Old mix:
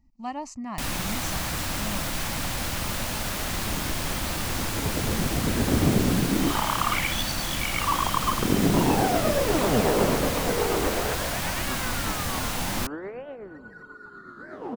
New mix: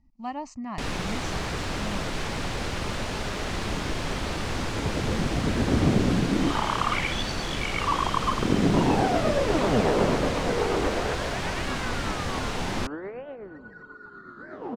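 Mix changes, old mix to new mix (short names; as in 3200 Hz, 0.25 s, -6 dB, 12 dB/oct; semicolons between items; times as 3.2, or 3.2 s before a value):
first sound: add bell 420 Hz +14 dB 0.3 oct; master: add air absorption 87 m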